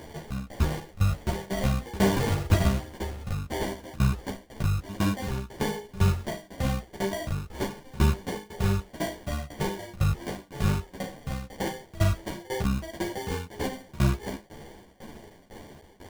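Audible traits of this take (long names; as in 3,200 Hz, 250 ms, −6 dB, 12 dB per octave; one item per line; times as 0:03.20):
a quantiser's noise floor 8 bits, dither triangular
tremolo saw down 2 Hz, depth 95%
aliases and images of a low sample rate 1,300 Hz, jitter 0%
a shimmering, thickened sound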